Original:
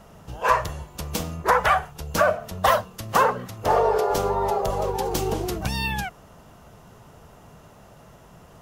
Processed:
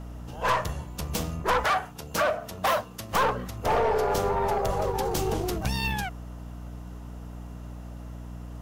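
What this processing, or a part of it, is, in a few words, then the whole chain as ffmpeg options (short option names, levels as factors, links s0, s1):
valve amplifier with mains hum: -filter_complex "[0:a]aeval=exprs='(tanh(8.91*val(0)+0.35)-tanh(0.35))/8.91':c=same,aeval=exprs='val(0)+0.0126*(sin(2*PI*60*n/s)+sin(2*PI*2*60*n/s)/2+sin(2*PI*3*60*n/s)/3+sin(2*PI*4*60*n/s)/4+sin(2*PI*5*60*n/s)/5)':c=same,asettb=1/sr,asplit=3[s0][s1][s2];[s0]atrim=end=1.644[s3];[s1]atrim=start=1.64:end=3.13,asetpts=PTS-STARTPTS,afade=t=in:d=0.004:c=qsin,afade=t=out:st=1.486:d=0.004:c=qsin,highpass=f=210:p=1[s4];[s2]atrim=start=3.126[s5];[s3][s4]acrossfade=d=0.004:c1=hsin:c2=qsin[s6];[s6][s5]acrossfade=d=0.004:c1=qsin:c2=hsin"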